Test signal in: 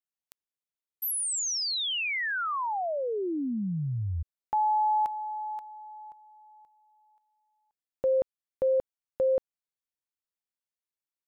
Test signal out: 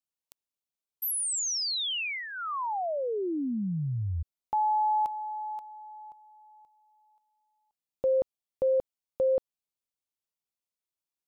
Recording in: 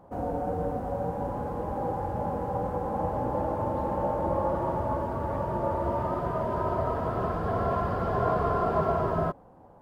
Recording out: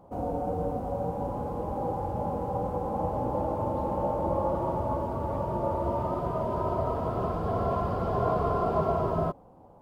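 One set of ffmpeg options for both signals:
ffmpeg -i in.wav -af "equalizer=frequency=1700:width_type=o:width=0.56:gain=-10" out.wav

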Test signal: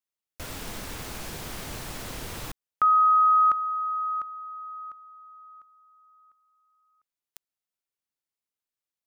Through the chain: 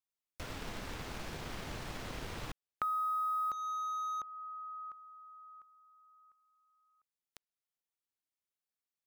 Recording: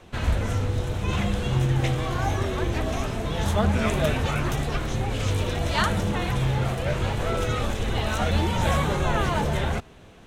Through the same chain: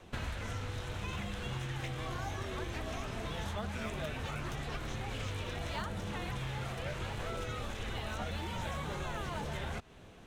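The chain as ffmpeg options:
ffmpeg -i in.wav -filter_complex "[0:a]asplit=2[link_01][link_02];[link_02]acrusher=bits=4:mix=0:aa=0.5,volume=-10.5dB[link_03];[link_01][link_03]amix=inputs=2:normalize=0,acrossover=split=1000|3200|6600[link_04][link_05][link_06][link_07];[link_04]acompressor=threshold=-31dB:ratio=10[link_08];[link_05]acompressor=threshold=-39dB:ratio=6[link_09];[link_06]acompressor=threshold=-49dB:ratio=5[link_10];[link_07]acompressor=threshold=-57dB:ratio=4[link_11];[link_08][link_09][link_10][link_11]amix=inputs=4:normalize=0,volume=-5.5dB" out.wav

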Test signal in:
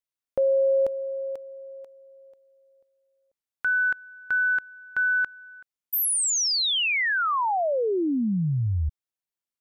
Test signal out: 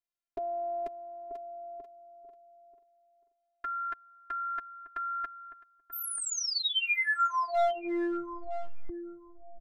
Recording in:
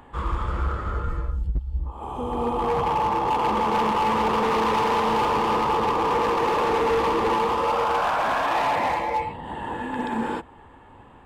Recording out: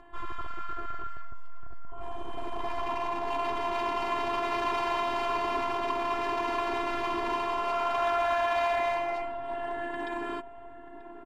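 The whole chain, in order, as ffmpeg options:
ffmpeg -i in.wav -filter_complex "[0:a]afftfilt=real='hypot(re,im)*cos(PI*b)':imag='0':win_size=512:overlap=0.75,lowpass=frequency=3500:poles=1,aecho=1:1:7.4:0.4,asplit=2[link_01][link_02];[link_02]adelay=936,lowpass=frequency=890:poles=1,volume=-10dB,asplit=2[link_03][link_04];[link_04]adelay=936,lowpass=frequency=890:poles=1,volume=0.16[link_05];[link_01][link_03][link_05]amix=inputs=3:normalize=0,acrossover=split=1000[link_06][link_07];[link_06]aeval=exprs='clip(val(0),-1,0.0355)':channel_layout=same[link_08];[link_08][link_07]amix=inputs=2:normalize=0" out.wav

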